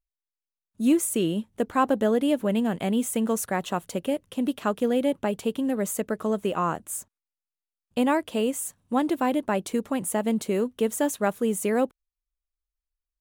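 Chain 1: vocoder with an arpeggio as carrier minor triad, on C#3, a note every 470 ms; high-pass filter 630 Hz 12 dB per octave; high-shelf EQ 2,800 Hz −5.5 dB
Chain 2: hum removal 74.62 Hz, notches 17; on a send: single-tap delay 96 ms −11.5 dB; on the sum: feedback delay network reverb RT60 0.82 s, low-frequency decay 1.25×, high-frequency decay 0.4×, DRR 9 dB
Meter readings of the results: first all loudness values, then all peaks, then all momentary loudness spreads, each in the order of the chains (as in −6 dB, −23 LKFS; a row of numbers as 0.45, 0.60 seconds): −37.0, −25.5 LKFS; −19.0, −9.0 dBFS; 7, 7 LU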